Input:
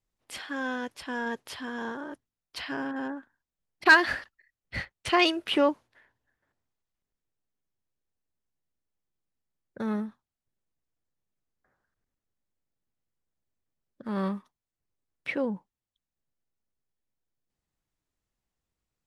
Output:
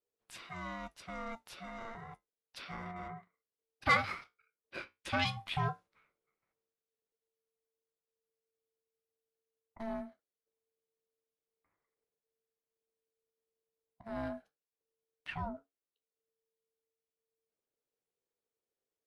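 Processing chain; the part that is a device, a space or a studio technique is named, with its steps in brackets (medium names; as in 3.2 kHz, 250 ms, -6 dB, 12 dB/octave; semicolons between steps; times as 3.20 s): alien voice (ring modulator 450 Hz; flange 0.11 Hz, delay 8 ms, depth 8.3 ms, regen -59%); trim -3 dB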